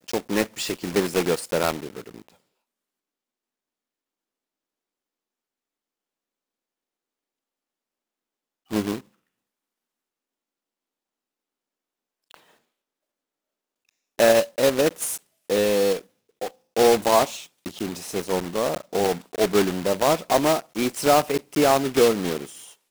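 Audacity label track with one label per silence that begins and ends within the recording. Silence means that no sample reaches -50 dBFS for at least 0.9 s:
2.340000	8.700000	silence
9.050000	12.310000	silence
12.510000	13.890000	silence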